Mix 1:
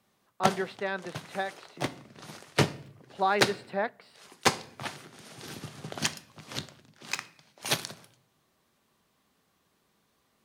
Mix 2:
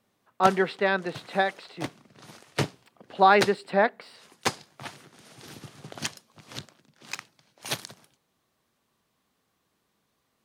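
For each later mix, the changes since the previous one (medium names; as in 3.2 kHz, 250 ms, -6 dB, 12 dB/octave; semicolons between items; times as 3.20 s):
speech +9.0 dB; reverb: off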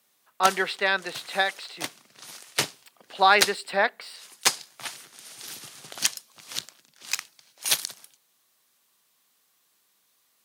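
master: add tilt EQ +4 dB/octave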